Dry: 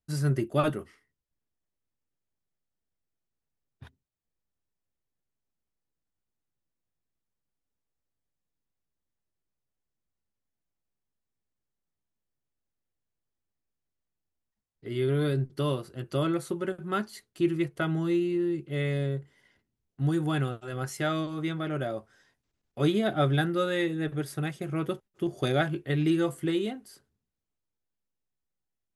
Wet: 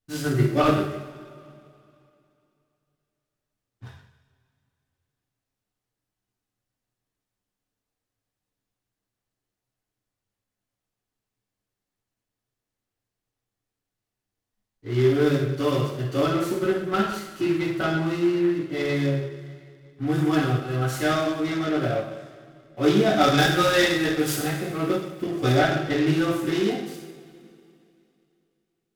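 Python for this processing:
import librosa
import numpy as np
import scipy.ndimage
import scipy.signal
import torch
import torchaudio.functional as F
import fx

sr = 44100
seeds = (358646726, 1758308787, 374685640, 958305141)

y = fx.high_shelf(x, sr, hz=2400.0, db=11.0, at=(23.1, 24.38))
y = fx.rev_double_slope(y, sr, seeds[0], early_s=0.73, late_s=2.8, knee_db=-18, drr_db=-8.5)
y = fx.noise_mod_delay(y, sr, seeds[1], noise_hz=1500.0, depth_ms=0.03)
y = F.gain(torch.from_numpy(y), -2.0).numpy()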